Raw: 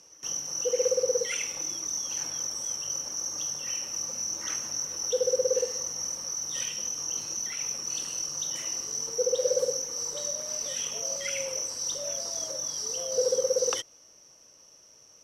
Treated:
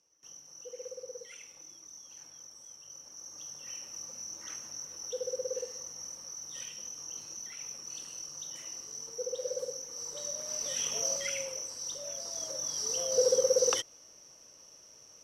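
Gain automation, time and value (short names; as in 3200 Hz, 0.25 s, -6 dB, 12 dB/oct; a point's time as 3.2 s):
2.78 s -18 dB
3.72 s -10 dB
9.76 s -10 dB
11.04 s +1 dB
11.58 s -7 dB
12.14 s -7 dB
12.95 s 0 dB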